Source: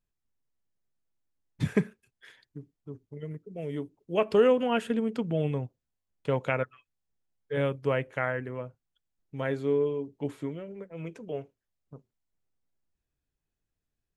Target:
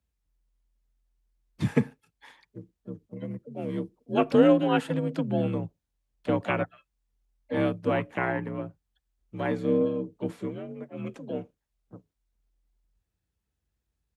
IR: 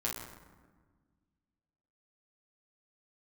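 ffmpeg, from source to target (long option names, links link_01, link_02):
-filter_complex "[0:a]asplit=3[link_01][link_02][link_03];[link_02]asetrate=22050,aresample=44100,atempo=2,volume=-3dB[link_04];[link_03]asetrate=55563,aresample=44100,atempo=0.793701,volume=-15dB[link_05];[link_01][link_04][link_05]amix=inputs=3:normalize=0,afreqshift=42"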